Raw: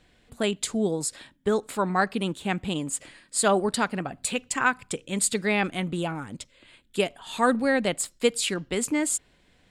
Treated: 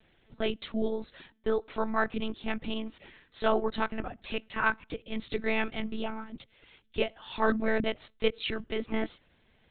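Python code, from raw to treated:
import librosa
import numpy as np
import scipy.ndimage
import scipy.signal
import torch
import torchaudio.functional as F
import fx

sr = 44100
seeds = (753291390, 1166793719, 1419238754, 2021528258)

y = fx.lpc_monotone(x, sr, seeds[0], pitch_hz=220.0, order=16)
y = y * librosa.db_to_amplitude(-4.0)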